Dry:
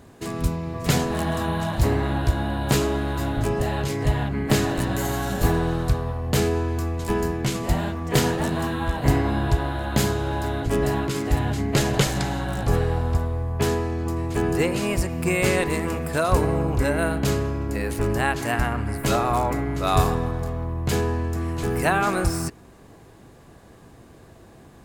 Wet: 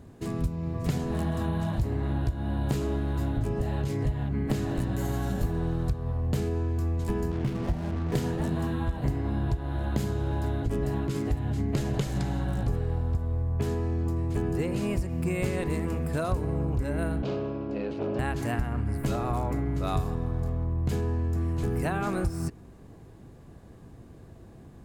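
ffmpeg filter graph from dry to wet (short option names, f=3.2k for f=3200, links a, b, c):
-filter_complex "[0:a]asettb=1/sr,asplit=3[a][b][c];[a]atrim=end=7.314[d];[b]atrim=start=7.31:end=8.15,asetpts=PTS-STARTPTS,afade=t=in:d=0.004:c=qsin,afade=t=out:st=0.836:d=0.004:c=qsin,highshelf=f=5.1k:g=-8,adynamicsmooth=sensitivity=6.5:basefreq=560,acrusher=bits=4:mix=0:aa=0.5[e];[c]atrim=start=8.146[f];[d][e]acrossfade=d=0.004:c1=hsin:c2=qsin[g];[g][f]acrossfade=d=0.004:c1=qsin:c2=hsin,asettb=1/sr,asplit=3[h][i][j];[h]atrim=end=17.224[k];[i]atrim=start=17.22:end=18.19,asetpts=PTS-STARTPTS,afade=t=in:d=0.004:c=qsin,afade=t=out:st=0.966:d=0.004:c=qsin,asoftclip=type=hard:threshold=-20.5dB,highpass=210,equalizer=f=590:t=q:w=4:g=7,equalizer=f=1.9k:t=q:w=4:g=-9,equalizer=f=2.7k:t=q:w=4:g=3,lowpass=f=4.4k:w=0.5412,lowpass=f=4.4k:w=1.3066[l];[j]atrim=start=18.186[m];[k][l]acrossfade=d=0.004:c1=hsin:c2=qsin[n];[n][m]acrossfade=d=0.004:c1=qsin:c2=hsin,lowshelf=f=400:g=11.5,acompressor=threshold=-15dB:ratio=6,volume=-9dB"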